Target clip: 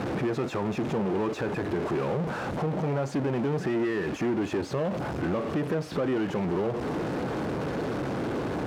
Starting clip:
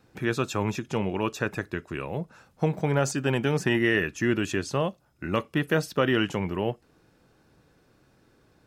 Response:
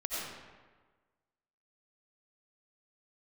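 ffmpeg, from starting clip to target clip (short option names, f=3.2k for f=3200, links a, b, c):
-af "aeval=exprs='val(0)+0.5*0.0531*sgn(val(0))':c=same,acompressor=threshold=-25dB:ratio=3,asoftclip=type=tanh:threshold=-27dB,bandpass=f=370:t=q:w=0.54:csg=0,volume=5.5dB"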